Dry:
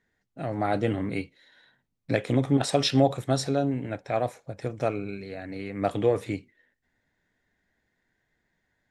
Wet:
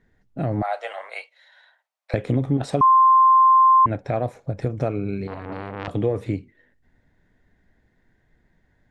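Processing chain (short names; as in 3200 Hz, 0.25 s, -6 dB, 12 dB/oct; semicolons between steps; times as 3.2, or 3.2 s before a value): 0.62–2.14 steep high-pass 610 Hz 48 dB/oct; tilt -2.5 dB/oct; compressor 2.5:1, threshold -30 dBFS, peak gain reduction 13 dB; 2.81–3.86 bleep 1050 Hz -17.5 dBFS; 5.27–5.88 core saturation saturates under 1800 Hz; gain +7 dB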